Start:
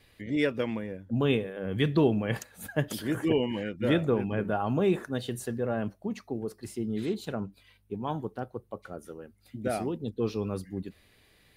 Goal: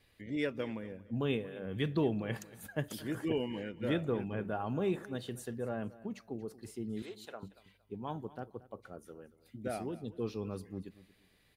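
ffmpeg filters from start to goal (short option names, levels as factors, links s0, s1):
-filter_complex "[0:a]asettb=1/sr,asplit=3[s0][s1][s2];[s0]atrim=end=7.024[s3];[s1]atrim=start=7.02:end=7.43,asetpts=PTS-STARTPTS,afade=t=in:d=0.004:c=qsin,afade=t=out:st=0.406:d=0.004:c=qsin,highpass=570[s4];[s2]atrim=start=7.426[s5];[s3][s4]acrossfade=d=0.004:c1=hsin:c2=qsin[s6];[s6][s5]acrossfade=d=0.004:c1=qsin:c2=hsin,aecho=1:1:231|462:0.119|0.0321,volume=0.422"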